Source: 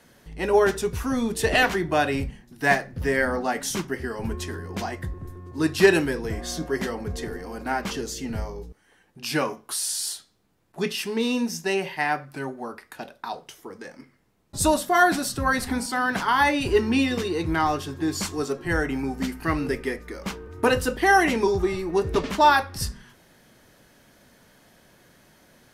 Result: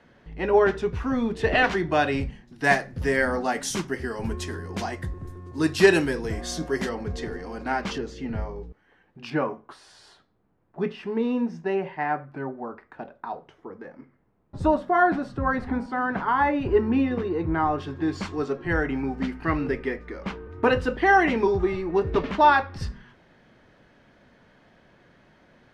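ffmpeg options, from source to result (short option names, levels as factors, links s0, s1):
-af "asetnsamples=n=441:p=0,asendcmd='1.64 lowpass f 5100;2.64 lowpass f 9600;6.89 lowpass f 5300;7.98 lowpass f 2400;9.3 lowpass f 1400;17.78 lowpass f 2800',lowpass=2700"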